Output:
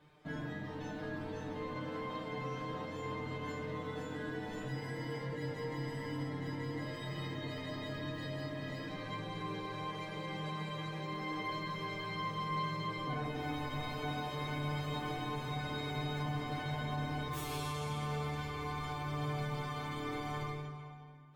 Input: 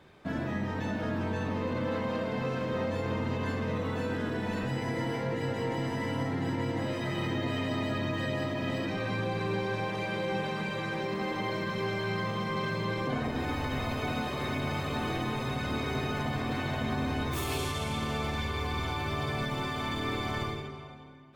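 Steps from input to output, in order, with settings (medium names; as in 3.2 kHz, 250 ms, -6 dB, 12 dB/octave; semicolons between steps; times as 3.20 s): feedback comb 150 Hz, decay 0.15 s, harmonics all, mix 100%; trim +1 dB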